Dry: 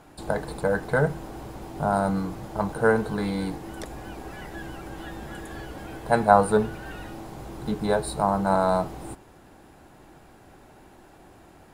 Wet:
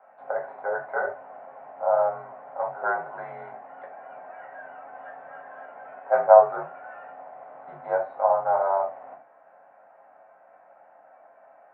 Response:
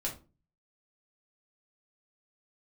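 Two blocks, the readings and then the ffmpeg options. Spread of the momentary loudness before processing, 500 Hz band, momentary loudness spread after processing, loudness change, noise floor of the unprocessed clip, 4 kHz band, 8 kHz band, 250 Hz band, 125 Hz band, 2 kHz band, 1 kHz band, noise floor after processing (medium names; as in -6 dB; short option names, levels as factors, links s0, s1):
17 LU, +1.5 dB, 21 LU, +1.0 dB, -52 dBFS, under -25 dB, under -35 dB, under -20 dB, under -20 dB, -3.5 dB, +0.5 dB, -55 dBFS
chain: -filter_complex "[0:a]highpass=f=280:t=q:w=0.5412,highpass=f=280:t=q:w=1.307,lowpass=f=2100:t=q:w=0.5176,lowpass=f=2100:t=q:w=0.7071,lowpass=f=2100:t=q:w=1.932,afreqshift=-62,lowshelf=f=450:t=q:w=3:g=-13.5[s0];[1:a]atrim=start_sample=2205,atrim=end_sample=3969[s1];[s0][s1]afir=irnorm=-1:irlink=0,volume=0.501"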